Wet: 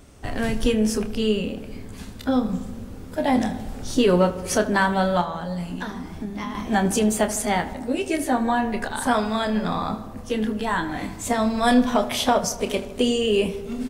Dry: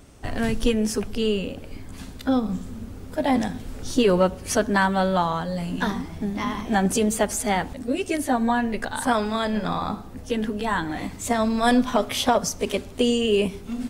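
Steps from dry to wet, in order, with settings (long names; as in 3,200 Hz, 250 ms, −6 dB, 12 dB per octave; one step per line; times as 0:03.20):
0:05.21–0:06.55: downward compressor, threshold −28 dBFS, peak gain reduction 8.5 dB
double-tracking delay 28 ms −9.5 dB
feedback echo with a low-pass in the loop 78 ms, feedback 74%, low-pass 2,600 Hz, level −14.5 dB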